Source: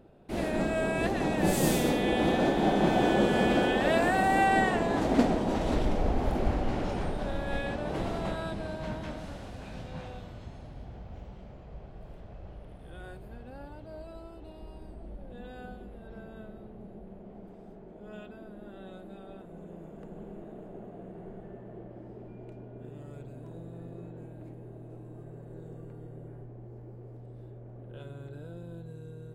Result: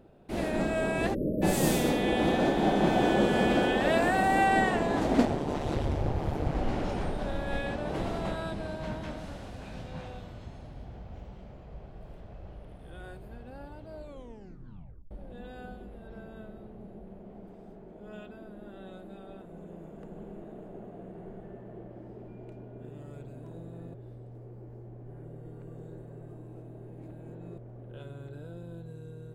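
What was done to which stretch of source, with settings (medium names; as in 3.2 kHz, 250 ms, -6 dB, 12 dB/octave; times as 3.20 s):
1.14–1.42 s: spectral selection erased 640–11000 Hz
5.25–6.55 s: ring modulator 73 Hz
13.96 s: tape stop 1.15 s
23.94–27.58 s: reverse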